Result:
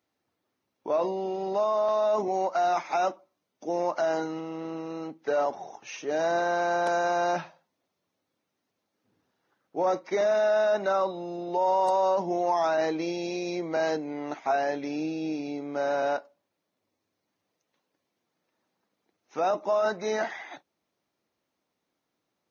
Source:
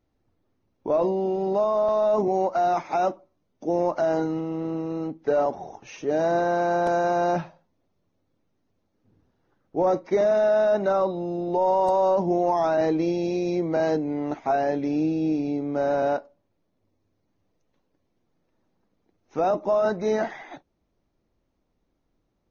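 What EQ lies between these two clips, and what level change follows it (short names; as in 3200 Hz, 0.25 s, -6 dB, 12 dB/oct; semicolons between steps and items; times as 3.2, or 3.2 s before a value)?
HPF 140 Hz 12 dB/oct; tilt shelf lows -6.5 dB, about 670 Hz; -3.0 dB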